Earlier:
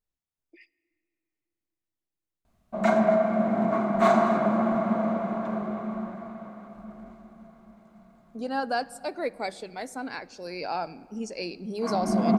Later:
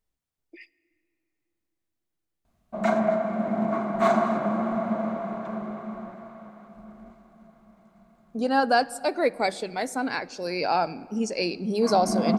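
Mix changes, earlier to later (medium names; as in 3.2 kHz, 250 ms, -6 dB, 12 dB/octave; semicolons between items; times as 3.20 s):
speech +7.0 dB; background: send -10.0 dB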